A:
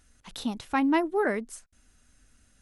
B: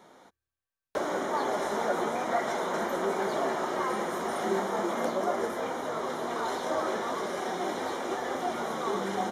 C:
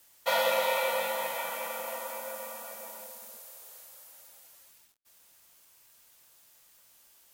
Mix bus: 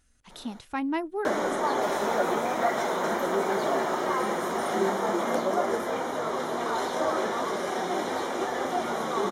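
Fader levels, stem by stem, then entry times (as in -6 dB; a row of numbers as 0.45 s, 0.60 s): -5.0 dB, +3.0 dB, -16.5 dB; 0.00 s, 0.30 s, 1.55 s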